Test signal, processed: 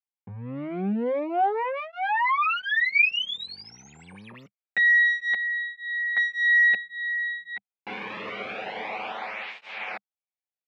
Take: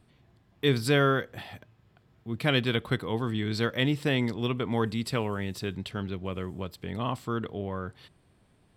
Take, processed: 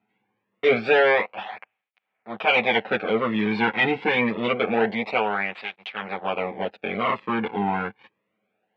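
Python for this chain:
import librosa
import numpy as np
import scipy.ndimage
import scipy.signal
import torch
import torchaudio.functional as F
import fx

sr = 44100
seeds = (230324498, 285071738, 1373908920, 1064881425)

y = fx.lower_of_two(x, sr, delay_ms=9.3)
y = fx.low_shelf(y, sr, hz=230.0, db=-12.0)
y = fx.leveller(y, sr, passes=3)
y = fx.cabinet(y, sr, low_hz=100.0, low_slope=24, high_hz=3000.0, hz=(130.0, 200.0, 320.0, 490.0, 770.0, 2300.0), db=(-4, 7, -4, 4, 9, 9))
y = fx.flanger_cancel(y, sr, hz=0.26, depth_ms=1.8)
y = y * 10.0 ** (1.0 / 20.0)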